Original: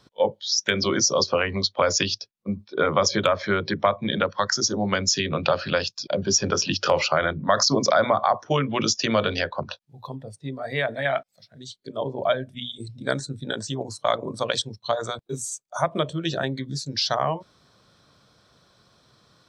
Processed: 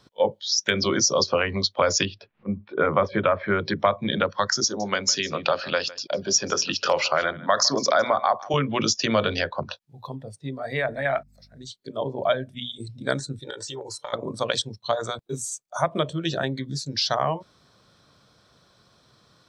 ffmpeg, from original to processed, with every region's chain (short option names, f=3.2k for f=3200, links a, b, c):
-filter_complex "[0:a]asettb=1/sr,asplit=3[a][b][c];[a]atrim=end=2.054[d];[b]atrim=start=2.05:end=3.59,asetpts=PTS-STARTPTS,afade=t=in:d=0.004:c=qsin,afade=t=out:st=1.536:d=0.004:c=qsin,lowpass=f=2.5k:w=0.5412,lowpass=f=2.5k:w=1.3066,acompressor=mode=upward:threshold=-34dB:ratio=2.5:attack=3.2:release=140:knee=2.83:detection=peak[e];[c]atrim=start=3.586[f];[d][e]acrossfade=d=0.004:c1=hsin:c2=qsin[g];[g][f]acrossfade=d=0.004:c1=qsin:c2=hsin,asettb=1/sr,asplit=3[h][i][j];[h]atrim=end=4.644[k];[i]atrim=start=4.64:end=8.54,asetpts=PTS-STARTPTS,afade=t=in:d=0.004:c=qsin,afade=t=out:st=3.896:d=0.004:c=qsin,highpass=f=380:p=1,aecho=1:1:157:0.112,atrim=end_sample=171990[l];[j]atrim=start=8.536[m];[k][l]acrossfade=d=0.004:c1=hsin:c2=qsin[n];[n][m]acrossfade=d=0.004:c1=qsin:c2=hsin,asettb=1/sr,asplit=3[o][p][q];[o]atrim=end=10.774[r];[p]atrim=start=10.77:end=11.67,asetpts=PTS-STARTPTS,afade=t=in:d=0.004:c=qsin,afade=t=out:st=0.896:d=0.004:c=qsin,equalizer=f=3.2k:t=o:w=0.38:g=-12.5,bandreject=f=73.18:t=h:w=4,bandreject=f=146.36:t=h:w=4,bandreject=f=219.54:t=h:w=4,aeval=exprs='val(0)+0.00158*(sin(2*PI*50*n/s)+sin(2*PI*2*50*n/s)/2+sin(2*PI*3*50*n/s)/3+sin(2*PI*4*50*n/s)/4+sin(2*PI*5*50*n/s)/5)':c=same[s];[q]atrim=start=11.666[t];[r][s]acrossfade=d=0.004:c1=hsin:c2=qsin[u];[u][t]acrossfade=d=0.004:c1=qsin:c2=hsin,asettb=1/sr,asplit=3[v][w][x];[v]atrim=end=13.394[y];[w]atrim=start=13.39:end=14.13,asetpts=PTS-STARTPTS,afade=t=in:d=0.004:c=qsin,afade=t=out:st=0.736:d=0.004:c=qsin,highpass=f=390:p=1,aecho=1:1:2.2:0.88,atrim=end_sample=32634,acompressor=threshold=-30dB:ratio=12:attack=3.2:release=140:knee=1:detection=peak[z];[x]atrim=start=14.126[aa];[y][z]acrossfade=d=0.004:c1=hsin:c2=qsin[ab];[ab][aa]acrossfade=d=0.004:c1=qsin:c2=hsin"